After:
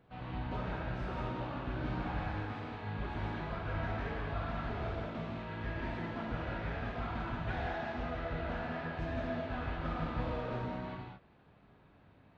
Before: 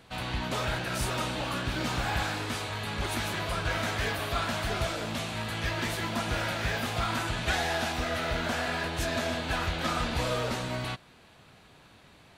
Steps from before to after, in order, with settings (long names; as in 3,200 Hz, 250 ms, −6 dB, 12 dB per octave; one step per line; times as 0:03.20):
head-to-tape spacing loss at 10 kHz 45 dB
reverb whose tail is shaped and stops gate 250 ms flat, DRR −2 dB
level −7.5 dB